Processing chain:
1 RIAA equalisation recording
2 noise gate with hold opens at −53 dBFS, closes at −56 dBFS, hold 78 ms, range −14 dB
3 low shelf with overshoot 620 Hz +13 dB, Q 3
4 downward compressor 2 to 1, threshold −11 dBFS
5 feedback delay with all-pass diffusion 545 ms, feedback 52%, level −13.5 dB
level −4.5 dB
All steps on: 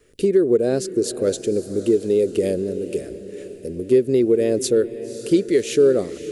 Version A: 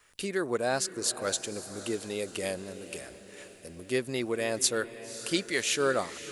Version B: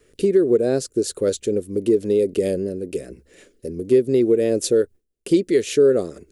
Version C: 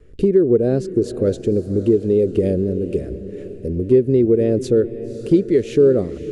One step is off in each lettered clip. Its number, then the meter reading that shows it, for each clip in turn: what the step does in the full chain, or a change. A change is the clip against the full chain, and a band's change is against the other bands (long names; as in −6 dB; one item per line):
3, 2 kHz band +16.0 dB
5, echo-to-direct ratio −12.0 dB to none audible
1, change in momentary loudness spread −3 LU